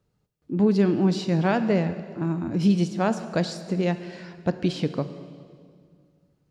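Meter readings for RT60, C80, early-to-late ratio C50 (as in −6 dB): 2.1 s, 12.5 dB, 11.5 dB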